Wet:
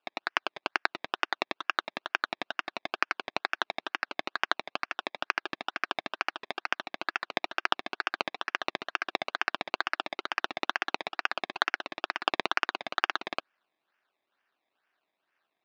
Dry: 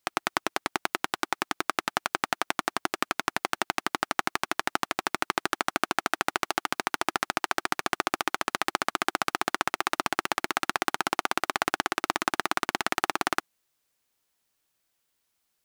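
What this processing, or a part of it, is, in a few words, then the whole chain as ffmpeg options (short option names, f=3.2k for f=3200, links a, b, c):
circuit-bent sampling toy: -af "acrusher=samples=21:mix=1:aa=0.000001:lfo=1:lforange=21:lforate=2.2,highpass=480,equalizer=f=490:t=q:w=4:g=-8,equalizer=f=860:t=q:w=4:g=-3,equalizer=f=1.6k:t=q:w=4:g=7,equalizer=f=2.7k:t=q:w=4:g=5,equalizer=f=3.8k:t=q:w=4:g=5,lowpass=f=4.6k:w=0.5412,lowpass=f=4.6k:w=1.3066,volume=-2.5dB"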